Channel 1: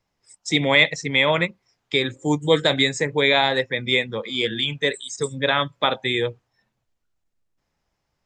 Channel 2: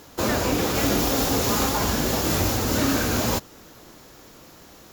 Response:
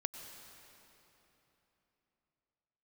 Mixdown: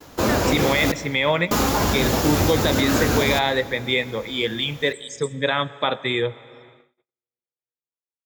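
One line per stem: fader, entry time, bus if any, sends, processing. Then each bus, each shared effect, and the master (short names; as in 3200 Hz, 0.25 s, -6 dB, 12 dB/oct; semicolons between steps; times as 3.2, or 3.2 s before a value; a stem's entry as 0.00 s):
-1.5 dB, 0.00 s, send -10.5 dB, HPF 54 Hz
+1.0 dB, 0.00 s, muted 0.92–1.51, send -7 dB, dry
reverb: on, RT60 3.5 s, pre-delay 88 ms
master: gate -48 dBFS, range -43 dB; high shelf 4000 Hz -5 dB; limiter -8.5 dBFS, peak gain reduction 6.5 dB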